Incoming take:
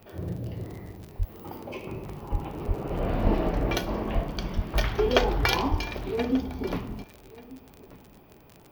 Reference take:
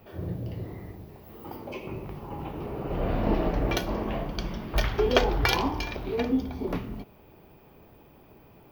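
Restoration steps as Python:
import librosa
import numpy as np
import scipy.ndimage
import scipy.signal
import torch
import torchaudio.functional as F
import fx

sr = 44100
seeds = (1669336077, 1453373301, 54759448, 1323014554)

y = fx.fix_declick_ar(x, sr, threshold=6.5)
y = fx.fix_deplosive(y, sr, at_s=(1.18, 2.31, 2.67, 3.23, 4.14, 4.55, 5.7))
y = fx.fix_echo_inverse(y, sr, delay_ms=1186, level_db=-20.0)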